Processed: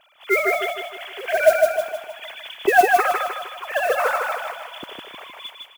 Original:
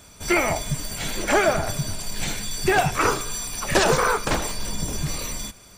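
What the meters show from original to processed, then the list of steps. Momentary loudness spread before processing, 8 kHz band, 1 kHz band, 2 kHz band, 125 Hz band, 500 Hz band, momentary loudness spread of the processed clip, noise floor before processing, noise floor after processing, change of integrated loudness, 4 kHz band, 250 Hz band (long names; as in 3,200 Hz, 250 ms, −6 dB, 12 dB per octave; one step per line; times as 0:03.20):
9 LU, −12.0 dB, +3.5 dB, +3.0 dB, below −25 dB, +4.0 dB, 19 LU, −48 dBFS, −49 dBFS, +3.0 dB, −4.5 dB, −7.5 dB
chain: three sine waves on the formant tracks
noise that follows the level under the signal 19 dB
repeating echo 155 ms, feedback 47%, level −3 dB
level −1 dB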